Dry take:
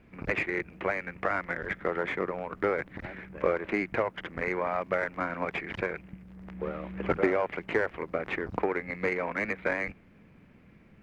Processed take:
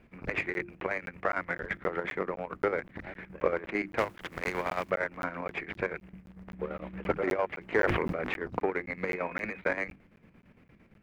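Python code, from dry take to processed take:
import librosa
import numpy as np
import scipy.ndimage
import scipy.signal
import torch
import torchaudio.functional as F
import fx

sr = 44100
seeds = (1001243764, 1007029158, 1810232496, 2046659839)

y = fx.spec_flatten(x, sr, power=0.65, at=(3.97, 4.89), fade=0.02)
y = fx.chopper(y, sr, hz=8.8, depth_pct=60, duty_pct=60)
y = fx.hum_notches(y, sr, base_hz=50, count=7)
y = fx.dmg_tone(y, sr, hz=2500.0, level_db=-48.0, at=(9.07, 9.58), fade=0.02)
y = fx.buffer_crackle(y, sr, first_s=0.54, period_s=0.26, block=512, kind='zero')
y = fx.sustainer(y, sr, db_per_s=24.0, at=(7.76, 8.32))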